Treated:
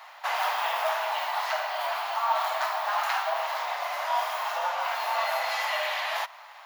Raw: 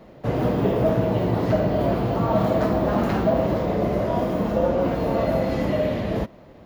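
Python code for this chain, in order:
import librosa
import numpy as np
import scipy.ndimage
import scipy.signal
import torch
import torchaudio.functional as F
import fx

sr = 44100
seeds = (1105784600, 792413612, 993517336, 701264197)

y = scipy.signal.sosfilt(scipy.signal.butter(8, 810.0, 'highpass', fs=sr, output='sos'), x)
y = fx.dynamic_eq(y, sr, hz=1200.0, q=0.95, threshold_db=-40.0, ratio=4.0, max_db=-3)
y = fx.rider(y, sr, range_db=5, speed_s=2.0)
y = y * librosa.db_to_amplitude(7.5)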